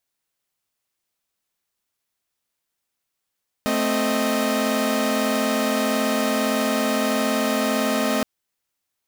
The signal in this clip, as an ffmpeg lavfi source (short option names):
-f lavfi -i "aevalsrc='0.0841*((2*mod(220*t,1)-1)+(2*mod(261.63*t,1)-1)+(2*mod(622.25*t,1)-1))':d=4.57:s=44100"